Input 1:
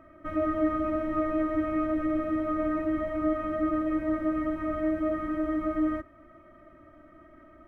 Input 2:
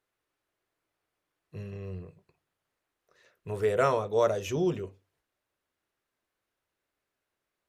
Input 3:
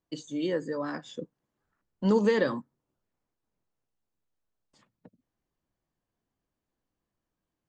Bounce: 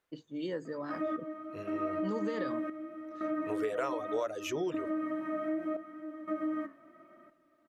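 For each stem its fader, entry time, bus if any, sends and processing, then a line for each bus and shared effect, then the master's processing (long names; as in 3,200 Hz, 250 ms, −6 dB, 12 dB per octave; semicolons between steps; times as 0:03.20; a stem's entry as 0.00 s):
+1.0 dB, 0.65 s, no send, high-pass filter 170 Hz 24 dB per octave; flanger 0.74 Hz, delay 6.1 ms, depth 8.7 ms, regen +75%; gate pattern "xxx...xxx" 88 BPM −12 dB
+2.0 dB, 0.00 s, no send, reverb reduction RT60 0.55 s; bass and treble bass −15 dB, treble −3 dB
−6.5 dB, 0.00 s, no send, low-pass that shuts in the quiet parts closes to 910 Hz, open at −25.5 dBFS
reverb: not used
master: downward compressor 6 to 1, threshold −30 dBFS, peak gain reduction 11 dB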